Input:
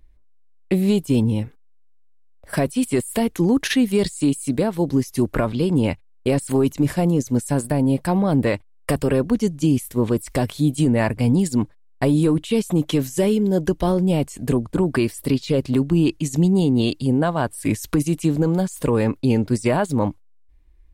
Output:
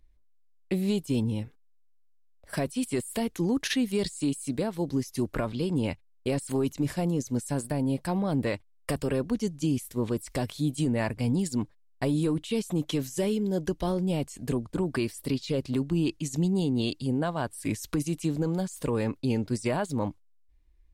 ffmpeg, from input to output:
ffmpeg -i in.wav -af "equalizer=frequency=5000:width_type=o:width=1.6:gain=4.5,volume=-9dB" out.wav

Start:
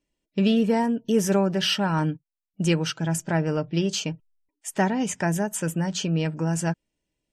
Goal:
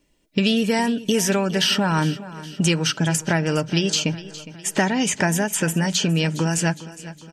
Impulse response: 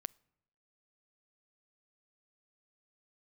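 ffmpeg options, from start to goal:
-filter_complex "[0:a]acrossover=split=1800|4600[link_01][link_02][link_03];[link_01]acompressor=threshold=-35dB:ratio=4[link_04];[link_02]acompressor=threshold=-40dB:ratio=4[link_05];[link_03]acompressor=threshold=-41dB:ratio=4[link_06];[link_04][link_05][link_06]amix=inputs=3:normalize=0,aecho=1:1:411|822|1233|1644|2055:0.15|0.0763|0.0389|0.0198|0.0101,asplit=2[link_07][link_08];[1:a]atrim=start_sample=2205[link_09];[link_08][link_09]afir=irnorm=-1:irlink=0,volume=3dB[link_10];[link_07][link_10]amix=inputs=2:normalize=0,volume=8.5dB"

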